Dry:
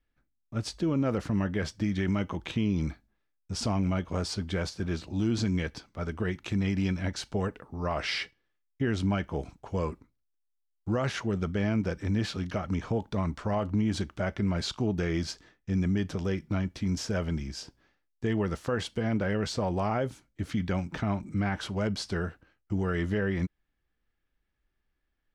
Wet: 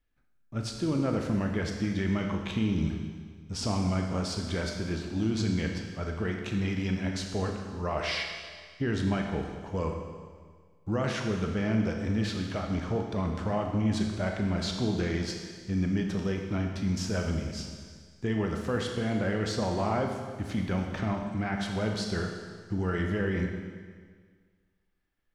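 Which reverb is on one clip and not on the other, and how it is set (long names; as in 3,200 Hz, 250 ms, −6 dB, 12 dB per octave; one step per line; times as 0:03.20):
four-comb reverb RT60 1.7 s, combs from 25 ms, DRR 2.5 dB
level −1.5 dB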